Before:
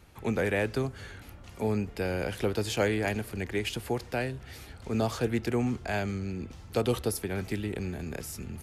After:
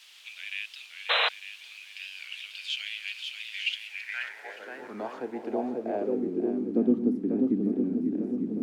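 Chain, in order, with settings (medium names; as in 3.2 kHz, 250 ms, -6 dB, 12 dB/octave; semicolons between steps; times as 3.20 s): bass shelf 350 Hz +8 dB; shuffle delay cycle 900 ms, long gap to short 1.5:1, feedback 49%, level -5 dB; high-pass sweep 2.7 kHz -> 270 Hz, 3.95–4.75 s; added noise white -43 dBFS; band-pass sweep 3.1 kHz -> 250 Hz, 3.72–6.95 s; 1.09–1.29 s: painted sound noise 450–4100 Hz -24 dBFS; 3.65–5.78 s: band-stop 1.2 kHz, Q 8.9; warped record 45 rpm, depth 100 cents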